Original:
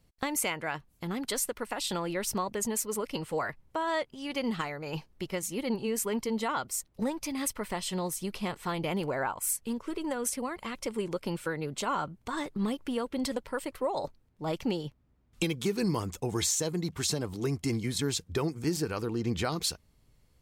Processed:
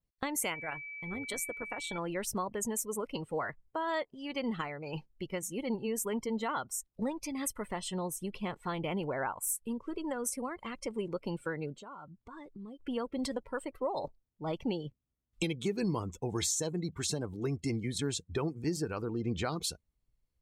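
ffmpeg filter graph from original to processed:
-filter_complex "[0:a]asettb=1/sr,asplit=3[s0][s1][s2];[s0]atrim=end=0.544[s3];[s1]atrim=start=0.54:end=1.98,asetpts=PTS-STARTPTS,afade=t=in:d=0.004:c=qsin,afade=t=out:st=1.436:d=0.004:c=qsin,bandreject=f=4900:w=7.4,tremolo=f=170:d=0.621,aeval=exprs='val(0)+0.0126*sin(2*PI*2300*n/s)':c=same[s4];[s2]atrim=start=1.976[s5];[s3][s4]acrossfade=d=0.004:c1=hsin:c2=qsin[s6];[s6][s5]acrossfade=d=0.004:c1=qsin:c2=hsin,asettb=1/sr,asplit=3[s7][s8][s9];[s7]atrim=end=11.724[s10];[s8]atrim=start=11.72:end=12.8,asetpts=PTS-STARTPTS,afade=t=in:d=0.004:c=qsin,afade=t=out:st=1.076:d=0.004:c=qsin,highshelf=f=5600:g=-4,acompressor=threshold=0.00631:ratio=3:attack=3.2:release=140:knee=1:detection=peak[s11];[s9]atrim=start=12.796[s12];[s10][s11]acrossfade=d=0.004:c1=hsin:c2=qsin[s13];[s13][s12]acrossfade=d=0.004:c1=qsin:c2=hsin,adynamicequalizer=threshold=0.00178:dfrequency=4800:dqfactor=3.2:tfrequency=4800:tqfactor=3.2:attack=5:release=100:ratio=0.375:range=3:mode=cutabove:tftype=bell,afftdn=nr=17:nf=-44,volume=0.708"

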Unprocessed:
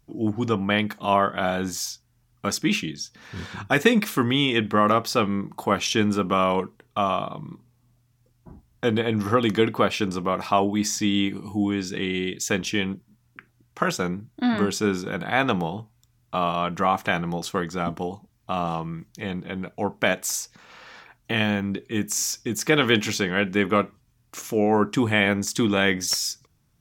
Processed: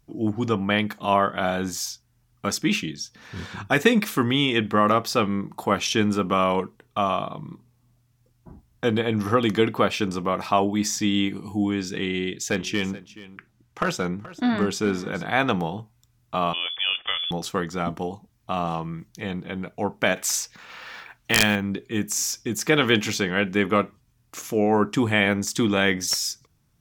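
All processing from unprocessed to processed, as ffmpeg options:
-filter_complex "[0:a]asettb=1/sr,asplit=3[s0][s1][s2];[s0]atrim=end=12.094[s3];[s1]atrim=start=12.09:end=15.26,asetpts=PTS-STARTPTS,afade=t=in:d=0.004:c=qsin,afade=t=out:st=3.166:d=0.004:c=qsin,highshelf=f=9000:g=-6.5,asoftclip=type=hard:threshold=0.2,aecho=1:1:428:0.133,atrim=end_sample=139797[s4];[s2]atrim=start=15.256[s5];[s3][s4]acrossfade=d=0.004:c1=hsin:c2=qsin[s6];[s6][s5]acrossfade=d=0.004:c1=qsin:c2=hsin,asettb=1/sr,asplit=3[s7][s8][s9];[s7]atrim=end=16.534[s10];[s8]atrim=start=16.53:end=17.31,asetpts=PTS-STARTPTS,afade=t=in:d=0.004:c=qsin,afade=t=out:st=0.776:d=0.004:c=qsin,equalizer=f=1300:w=0.81:g=-7.5,lowpass=f=3100:t=q:w=0.5098,lowpass=f=3100:t=q:w=0.6013,lowpass=f=3100:t=q:w=0.9,lowpass=f=3100:t=q:w=2.563,afreqshift=-3600[s11];[s9]atrim=start=17.306[s12];[s10][s11]acrossfade=d=0.004:c1=hsin:c2=qsin[s13];[s13][s12]acrossfade=d=0.004:c1=qsin:c2=hsin,asettb=1/sr,asplit=3[s14][s15][s16];[s14]atrim=end=20.164[s17];[s15]atrim=start=20.16:end=21.56,asetpts=PTS-STARTPTS,afade=t=in:d=0.004:c=qsin,afade=t=out:st=1.396:d=0.004:c=qsin,equalizer=f=2300:w=0.48:g=7,acrusher=bits=6:mode=log:mix=0:aa=0.000001,aeval=exprs='(mod(1.78*val(0)+1,2)-1)/1.78':c=same[s18];[s16]atrim=start=21.556[s19];[s17][s18]acrossfade=d=0.004:c1=hsin:c2=qsin[s20];[s20][s19]acrossfade=d=0.004:c1=qsin:c2=hsin"

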